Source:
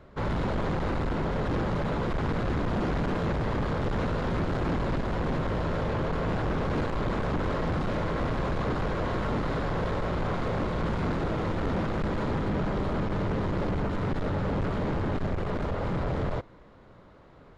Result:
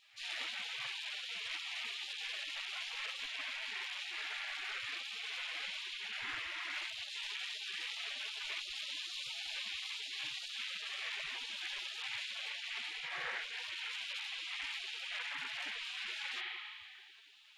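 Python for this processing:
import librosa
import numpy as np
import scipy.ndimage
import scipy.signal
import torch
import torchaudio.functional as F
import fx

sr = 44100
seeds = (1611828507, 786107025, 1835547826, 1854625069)

y = fx.rev_spring(x, sr, rt60_s=2.1, pass_ms=(30,), chirp_ms=70, drr_db=-4.5)
y = fx.spec_gate(y, sr, threshold_db=-30, keep='weak')
y = fx.rider(y, sr, range_db=10, speed_s=0.5)
y = F.gain(torch.from_numpy(y), 4.0).numpy()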